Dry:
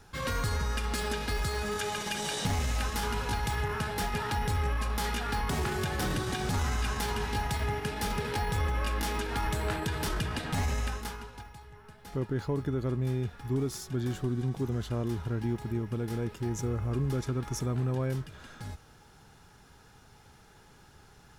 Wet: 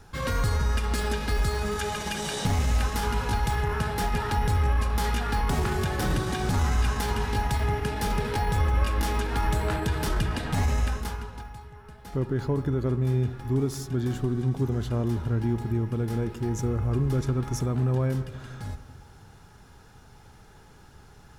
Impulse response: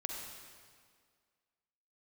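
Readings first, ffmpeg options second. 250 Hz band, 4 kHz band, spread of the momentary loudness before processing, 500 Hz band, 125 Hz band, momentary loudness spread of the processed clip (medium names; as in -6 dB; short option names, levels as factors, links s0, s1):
+4.5 dB, +1.0 dB, 4 LU, +4.0 dB, +6.0 dB, 5 LU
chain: -filter_complex "[0:a]asplit=2[s0][s1];[s1]lowshelf=f=150:g=9.5[s2];[1:a]atrim=start_sample=2205,lowpass=2000[s3];[s2][s3]afir=irnorm=-1:irlink=0,volume=0.376[s4];[s0][s4]amix=inputs=2:normalize=0,volume=1.19"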